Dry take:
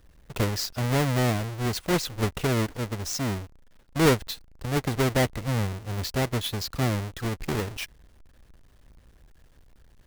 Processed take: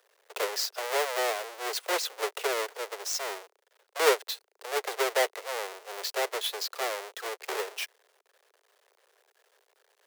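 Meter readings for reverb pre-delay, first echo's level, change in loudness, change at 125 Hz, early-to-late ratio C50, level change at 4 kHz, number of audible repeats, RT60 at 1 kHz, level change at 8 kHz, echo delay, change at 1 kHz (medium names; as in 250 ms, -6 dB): no reverb, no echo, -3.5 dB, under -40 dB, no reverb, 0.0 dB, no echo, no reverb, 0.0 dB, no echo, 0.0 dB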